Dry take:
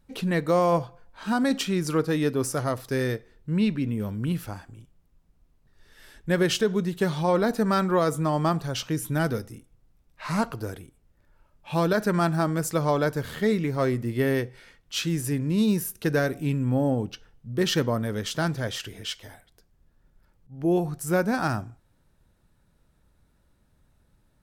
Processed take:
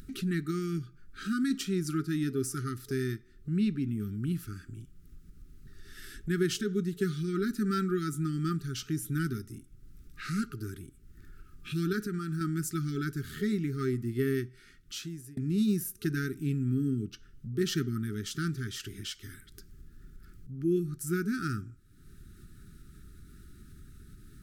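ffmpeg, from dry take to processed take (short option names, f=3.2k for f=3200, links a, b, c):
-filter_complex "[0:a]asettb=1/sr,asplit=3[a][b][c];[a]atrim=end=12.014[d];[b]atrim=start=12.01:end=12.41,asetpts=PTS-STARTPTS,afade=t=in:d=0.004:c=qsin,afade=t=out:st=0.396:d=0.004:c=qsin,acompressor=threshold=-24dB:ratio=6:attack=3.2:release=140:knee=1:detection=peak[e];[c]atrim=start=12.406[f];[d][e]acrossfade=d=0.004:c1=hsin:c2=qsin[g];[g][f]acrossfade=d=0.004:c1=qsin:c2=hsin,asplit=2[h][i];[h]atrim=end=15.37,asetpts=PTS-STARTPTS,afade=t=out:st=14.44:d=0.93[j];[i]atrim=start=15.37,asetpts=PTS-STARTPTS,afade=t=in:d=0.004:c=hsin[k];[j][k]concat=n=2:v=0:a=1,afftfilt=real='re*(1-between(b*sr/4096,420,1200))':imag='im*(1-between(b*sr/4096,420,1200))':win_size=4096:overlap=0.75,equalizer=f=2.5k:w=0.93:g=-6,acompressor=mode=upward:threshold=-29dB:ratio=2.5,volume=-4.5dB"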